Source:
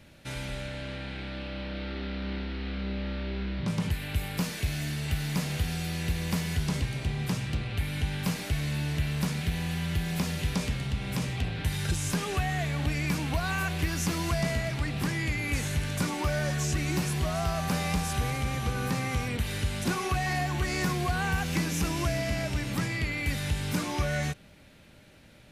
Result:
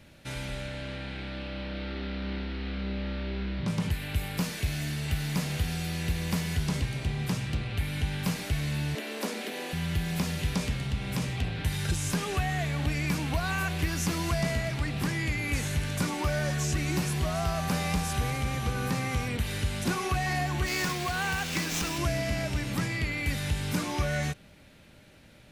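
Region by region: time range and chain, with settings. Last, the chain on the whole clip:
8.95–9.73 s: steep high-pass 200 Hz 96 dB/octave + peaking EQ 500 Hz +8.5 dB 1 oct
20.66–21.98 s: tilt EQ +2 dB/octave + sliding maximum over 3 samples
whole clip: none

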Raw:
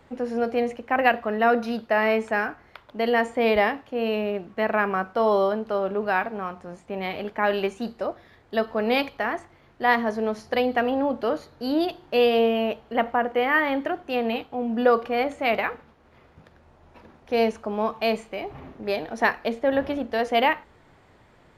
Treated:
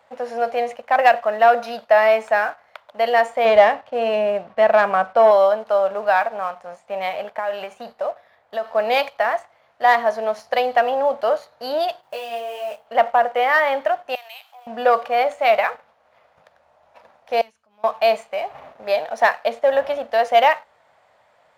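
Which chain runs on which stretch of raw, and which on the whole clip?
3.45–5.31 s: Savitzky-Golay filter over 15 samples + bass shelf 450 Hz +8.5 dB
7.09–8.66 s: peaking EQ 6.4 kHz -6 dB 1.9 oct + compression 10:1, threshold -26 dBFS
12.01–12.87 s: block-companded coder 5-bit + compression 5:1, threshold -26 dBFS + detune thickener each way 14 cents
14.15–14.67 s: high-pass 690 Hz 24 dB/octave + differentiator + level flattener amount 50%
17.41–17.84 s: high-pass 59 Hz + amplifier tone stack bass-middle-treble 6-0-2 + transient shaper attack -6 dB, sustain +1 dB
whole clip: waveshaping leveller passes 1; high-pass 180 Hz 6 dB/octave; resonant low shelf 460 Hz -9.5 dB, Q 3

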